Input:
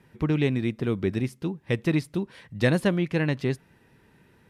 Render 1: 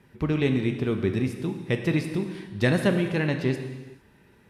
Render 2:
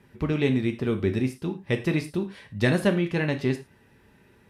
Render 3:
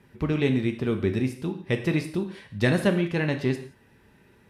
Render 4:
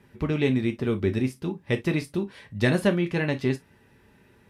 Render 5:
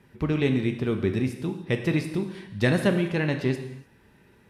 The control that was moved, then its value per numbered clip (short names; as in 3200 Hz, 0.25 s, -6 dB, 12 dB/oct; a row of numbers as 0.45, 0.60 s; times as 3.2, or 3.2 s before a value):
non-linear reverb, gate: 480, 130, 200, 80, 330 ms